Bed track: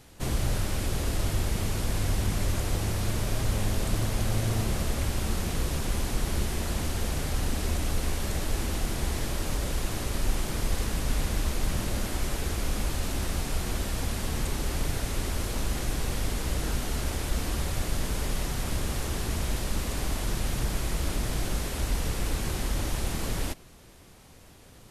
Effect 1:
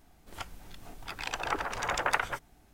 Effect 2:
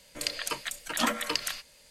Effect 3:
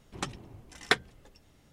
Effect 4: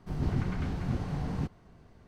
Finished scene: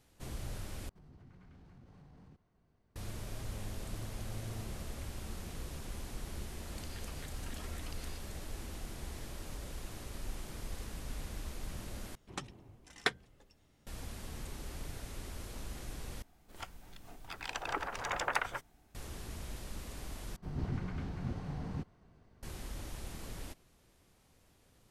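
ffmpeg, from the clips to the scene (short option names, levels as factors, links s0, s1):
-filter_complex "[4:a]asplit=2[s0][s1];[0:a]volume=0.188[s2];[s0]acompressor=threshold=0.0126:ratio=4:attack=1.7:release=57:knee=1:detection=rms[s3];[2:a]acompressor=threshold=0.00891:ratio=6:attack=3.2:release=140:knee=1:detection=peak[s4];[s2]asplit=5[s5][s6][s7][s8][s9];[s5]atrim=end=0.894[s10];[s3]atrim=end=2.07,asetpts=PTS-STARTPTS,volume=0.141[s11];[s6]atrim=start=2.956:end=12.154[s12];[3:a]atrim=end=1.72,asetpts=PTS-STARTPTS,volume=0.447[s13];[s7]atrim=start=13.866:end=16.224[s14];[1:a]atrim=end=2.73,asetpts=PTS-STARTPTS,volume=0.562[s15];[s8]atrim=start=18.946:end=20.364[s16];[s1]atrim=end=2.07,asetpts=PTS-STARTPTS,volume=0.447[s17];[s9]atrim=start=22.426[s18];[s4]atrim=end=1.9,asetpts=PTS-STARTPTS,volume=0.376,afade=t=in:d=0.004:c=hsin,afade=t=out:st=1.896:d=0.004:c=hsin,adelay=6570[s19];[s10][s11]acrossfade=d=0.004:c1=hsin:c2=hsin[s20];[s20][s12]acrossfade=d=0.004:c1=hsin:c2=hsin[s21];[s21][s13]acrossfade=d=0.004:c1=hsin:c2=hsin[s22];[s22][s14]acrossfade=d=0.004:c1=hsin:c2=hsin[s23];[s23][s15]acrossfade=d=0.004:c1=hsin:c2=hsin[s24];[s24][s16]acrossfade=d=0.004:c1=hsin:c2=hsin[s25];[s25][s17]acrossfade=d=0.004:c1=hsin:c2=hsin[s26];[s26][s18]acrossfade=d=0.004:c1=hsin:c2=hsin[s27];[s27][s19]amix=inputs=2:normalize=0"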